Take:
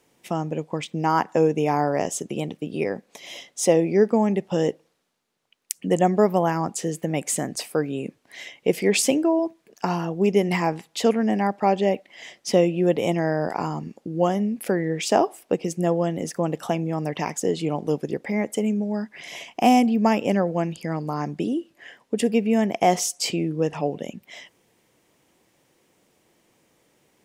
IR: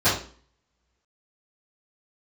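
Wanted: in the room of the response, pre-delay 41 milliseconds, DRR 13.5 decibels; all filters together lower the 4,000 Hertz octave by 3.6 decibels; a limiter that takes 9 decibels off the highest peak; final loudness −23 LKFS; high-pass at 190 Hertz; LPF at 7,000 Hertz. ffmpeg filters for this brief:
-filter_complex "[0:a]highpass=190,lowpass=7000,equalizer=frequency=4000:width_type=o:gain=-4.5,alimiter=limit=-13dB:level=0:latency=1,asplit=2[link_01][link_02];[1:a]atrim=start_sample=2205,adelay=41[link_03];[link_02][link_03]afir=irnorm=-1:irlink=0,volume=-31.5dB[link_04];[link_01][link_04]amix=inputs=2:normalize=0,volume=3dB"

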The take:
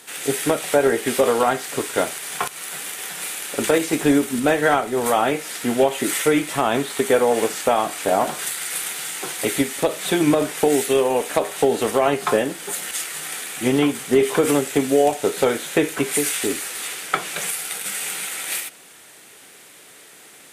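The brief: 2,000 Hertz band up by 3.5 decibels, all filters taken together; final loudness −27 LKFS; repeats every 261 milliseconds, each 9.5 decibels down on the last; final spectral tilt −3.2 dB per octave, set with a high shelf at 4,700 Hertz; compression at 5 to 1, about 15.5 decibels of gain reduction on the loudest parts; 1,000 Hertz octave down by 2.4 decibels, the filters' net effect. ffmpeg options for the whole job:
ffmpeg -i in.wav -af "equalizer=frequency=1000:width_type=o:gain=-5,equalizer=frequency=2000:width_type=o:gain=6.5,highshelf=frequency=4700:gain=-4.5,acompressor=threshold=-31dB:ratio=5,aecho=1:1:261|522|783|1044:0.335|0.111|0.0365|0.012,volume=5.5dB" out.wav

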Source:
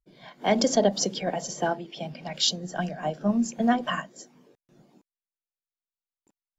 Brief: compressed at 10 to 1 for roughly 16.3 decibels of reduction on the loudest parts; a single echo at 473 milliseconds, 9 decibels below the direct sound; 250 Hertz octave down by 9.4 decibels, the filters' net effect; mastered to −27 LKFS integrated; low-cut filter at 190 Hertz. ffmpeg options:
ffmpeg -i in.wav -af "highpass=190,equalizer=frequency=250:width_type=o:gain=-9,acompressor=threshold=-36dB:ratio=10,aecho=1:1:473:0.355,volume=13.5dB" out.wav

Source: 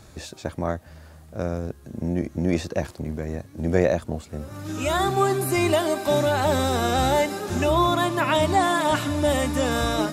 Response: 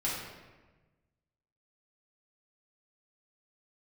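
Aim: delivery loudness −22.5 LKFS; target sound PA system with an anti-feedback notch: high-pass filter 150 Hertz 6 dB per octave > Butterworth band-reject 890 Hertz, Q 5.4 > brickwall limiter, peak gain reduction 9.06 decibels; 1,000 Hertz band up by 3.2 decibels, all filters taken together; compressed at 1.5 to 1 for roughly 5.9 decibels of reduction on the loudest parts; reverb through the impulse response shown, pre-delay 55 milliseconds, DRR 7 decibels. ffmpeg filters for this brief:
-filter_complex "[0:a]equalizer=frequency=1000:width_type=o:gain=6,acompressor=threshold=-29dB:ratio=1.5,asplit=2[link_01][link_02];[1:a]atrim=start_sample=2205,adelay=55[link_03];[link_02][link_03]afir=irnorm=-1:irlink=0,volume=-13.5dB[link_04];[link_01][link_04]amix=inputs=2:normalize=0,highpass=frequency=150:poles=1,asuperstop=centerf=890:order=8:qfactor=5.4,volume=7.5dB,alimiter=limit=-12.5dB:level=0:latency=1"

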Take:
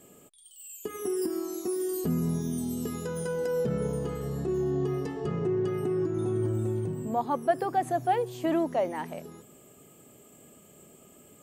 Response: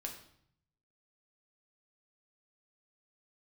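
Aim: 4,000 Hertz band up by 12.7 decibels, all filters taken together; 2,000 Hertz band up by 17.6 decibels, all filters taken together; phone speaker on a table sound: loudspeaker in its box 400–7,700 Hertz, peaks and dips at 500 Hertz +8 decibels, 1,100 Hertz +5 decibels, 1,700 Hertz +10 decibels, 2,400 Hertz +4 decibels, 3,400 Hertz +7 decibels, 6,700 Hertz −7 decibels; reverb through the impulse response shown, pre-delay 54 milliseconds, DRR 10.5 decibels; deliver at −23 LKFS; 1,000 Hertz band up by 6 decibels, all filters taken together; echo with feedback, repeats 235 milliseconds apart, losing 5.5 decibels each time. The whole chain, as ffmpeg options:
-filter_complex "[0:a]equalizer=frequency=1000:width_type=o:gain=4,equalizer=frequency=2000:width_type=o:gain=8.5,equalizer=frequency=4000:width_type=o:gain=7.5,aecho=1:1:235|470|705|940|1175|1410|1645:0.531|0.281|0.149|0.079|0.0419|0.0222|0.0118,asplit=2[link_01][link_02];[1:a]atrim=start_sample=2205,adelay=54[link_03];[link_02][link_03]afir=irnorm=-1:irlink=0,volume=-9dB[link_04];[link_01][link_04]amix=inputs=2:normalize=0,highpass=frequency=400:width=0.5412,highpass=frequency=400:width=1.3066,equalizer=frequency=500:width_type=q:width=4:gain=8,equalizer=frequency=1100:width_type=q:width=4:gain=5,equalizer=frequency=1700:width_type=q:width=4:gain=10,equalizer=frequency=2400:width_type=q:width=4:gain=4,equalizer=frequency=3400:width_type=q:width=4:gain=7,equalizer=frequency=6700:width_type=q:width=4:gain=-7,lowpass=frequency=7700:width=0.5412,lowpass=frequency=7700:width=1.3066,volume=2dB"

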